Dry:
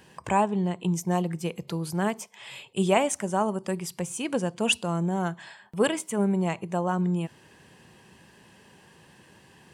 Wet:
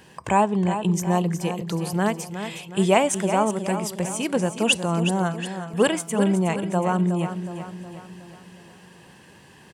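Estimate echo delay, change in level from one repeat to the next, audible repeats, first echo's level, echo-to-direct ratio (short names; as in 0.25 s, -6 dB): 0.366 s, -6.0 dB, 5, -9.5 dB, -8.5 dB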